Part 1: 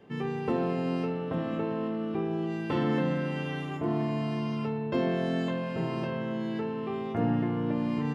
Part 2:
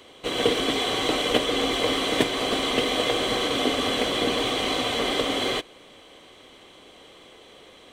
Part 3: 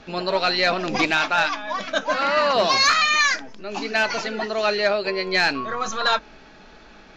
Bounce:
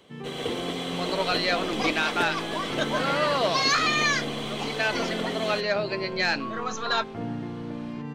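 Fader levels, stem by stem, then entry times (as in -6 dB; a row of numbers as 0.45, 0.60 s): -5.5, -9.0, -5.5 dB; 0.00, 0.00, 0.85 s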